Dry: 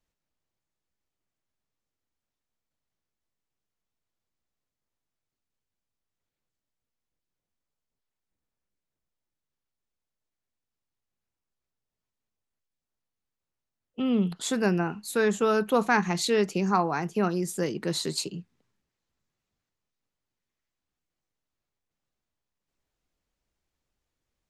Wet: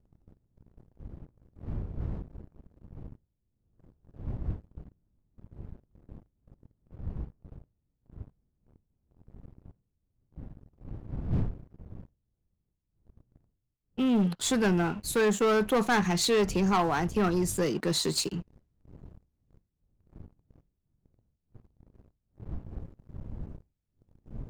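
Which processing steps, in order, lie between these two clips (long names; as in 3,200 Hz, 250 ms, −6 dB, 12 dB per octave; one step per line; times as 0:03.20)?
wind on the microphone 110 Hz −44 dBFS
leveller curve on the samples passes 3
level −8.5 dB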